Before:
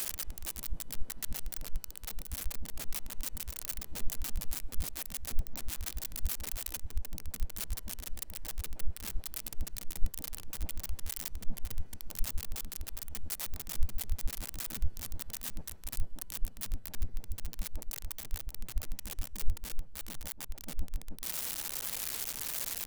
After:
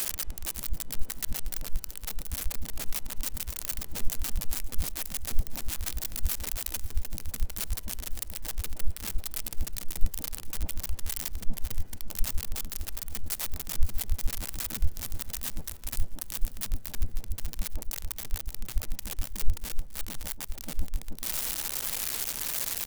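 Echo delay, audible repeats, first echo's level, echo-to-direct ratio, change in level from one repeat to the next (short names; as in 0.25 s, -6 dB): 0.545 s, 3, -18.5 dB, -17.5 dB, -7.0 dB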